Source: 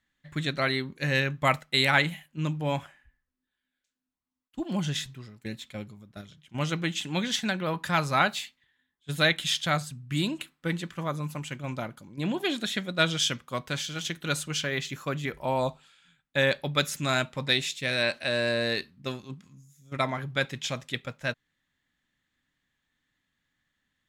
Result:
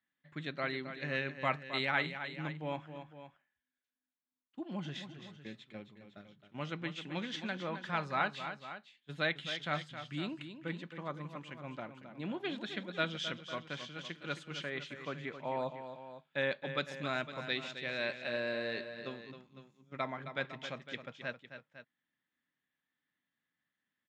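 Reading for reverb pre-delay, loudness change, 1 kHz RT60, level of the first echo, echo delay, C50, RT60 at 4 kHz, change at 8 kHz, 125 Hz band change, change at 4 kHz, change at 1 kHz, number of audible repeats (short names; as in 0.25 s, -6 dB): none, -10.0 dB, none, -10.0 dB, 0.266 s, none, none, -22.5 dB, -13.0 dB, -12.5 dB, -8.5 dB, 2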